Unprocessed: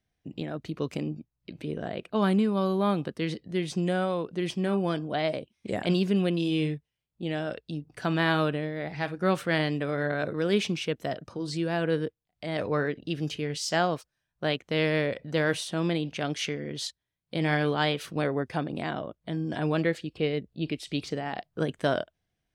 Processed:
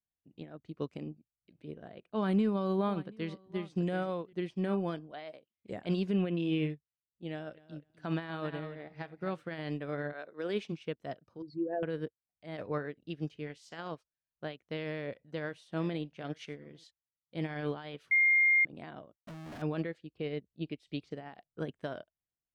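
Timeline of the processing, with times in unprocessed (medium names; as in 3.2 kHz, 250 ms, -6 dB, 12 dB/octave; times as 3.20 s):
2.10–4.33 s: delay 731 ms -13.5 dB
5.11–5.53 s: high-pass 520 Hz 6 dB/octave
6.14–6.70 s: resonant high shelf 3.5 kHz -8 dB, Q 1.5
7.29–9.44 s: feedback delay 251 ms, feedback 16%, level -10.5 dB
10.12–10.71 s: high-pass 500 Hz -> 190 Hz
11.42–11.83 s: resonances exaggerated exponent 3
13.46–13.90 s: spectral peaks clipped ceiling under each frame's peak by 12 dB
14.94–16.84 s: delay 854 ms -21 dB
18.11–18.65 s: bleep 2.12 kHz -11 dBFS
19.16–19.62 s: Schmitt trigger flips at -44.5 dBFS
whole clip: peak limiter -20 dBFS; low-pass 3.3 kHz 6 dB/octave; upward expansion 2.5:1, over -38 dBFS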